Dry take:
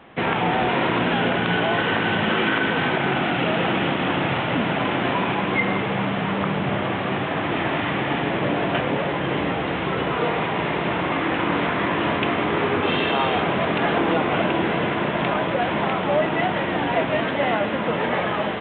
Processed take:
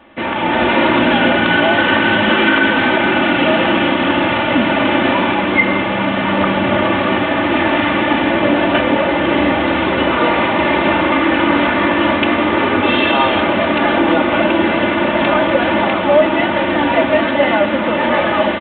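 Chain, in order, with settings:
comb filter 3.4 ms, depth 76%
automatic gain control

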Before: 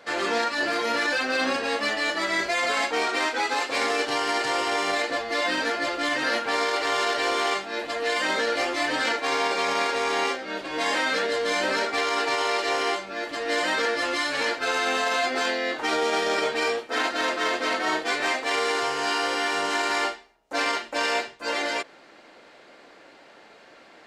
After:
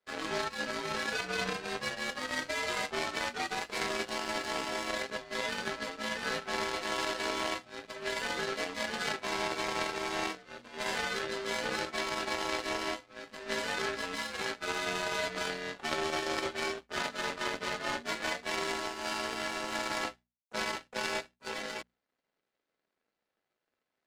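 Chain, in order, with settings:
frequency shifter −72 Hz
power curve on the samples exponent 2
mains-hum notches 60/120/180/240 Hz

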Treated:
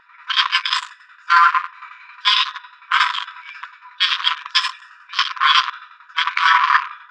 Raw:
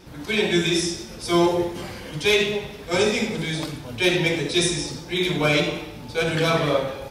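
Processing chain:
adaptive Wiener filter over 41 samples
formants moved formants +6 semitones
shaped tremolo saw down 11 Hz, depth 70%
linear-phase brick-wall high-pass 970 Hz
head-to-tape spacing loss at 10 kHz 45 dB
boost into a limiter +31 dB
level −1 dB

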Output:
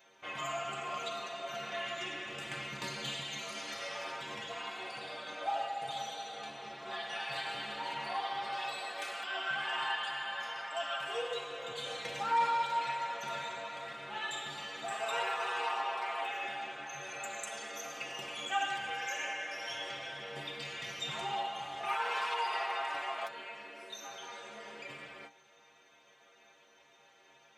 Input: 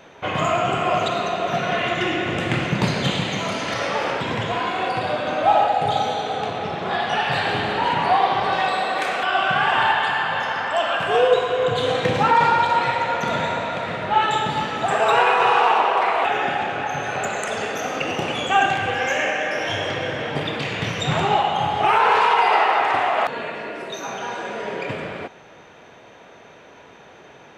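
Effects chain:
spectral tilt +3 dB per octave
stiff-string resonator 69 Hz, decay 0.37 s, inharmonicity 0.008
level −8.5 dB

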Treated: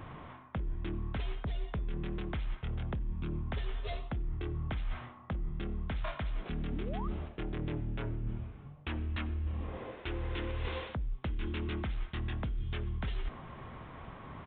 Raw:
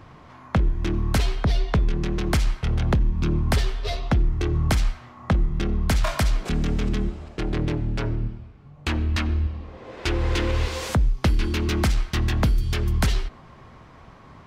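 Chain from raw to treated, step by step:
reversed playback
downward compressor 8 to 1, threshold −33 dBFS, peak gain reduction 17 dB
reversed playback
sound drawn into the spectrogram rise, 0:06.71–0:07.08, 220–1,300 Hz −43 dBFS
downsampling to 8,000 Hz

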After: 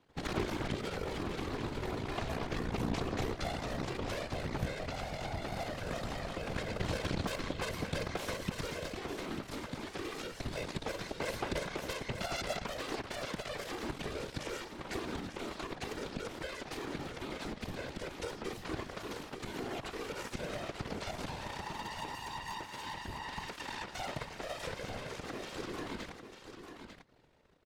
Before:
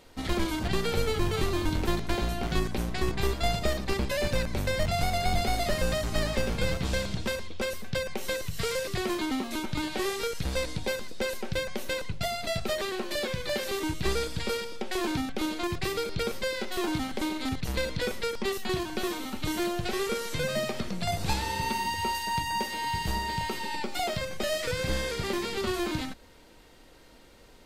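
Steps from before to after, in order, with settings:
low-pass filter 2,100 Hz 6 dB per octave
in parallel at 0 dB: downward compressor, threshold −35 dBFS, peak gain reduction 13.5 dB
on the sum: brickwall limiter −23 dBFS, peak gain reduction 9.5 dB
speech leveller 2 s
harmonic generator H 3 −8 dB, 4 −24 dB, 5 −25 dB, 6 −21 dB, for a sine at −21 dBFS
random phases in short frames
on a send: single-tap delay 896 ms −8.5 dB

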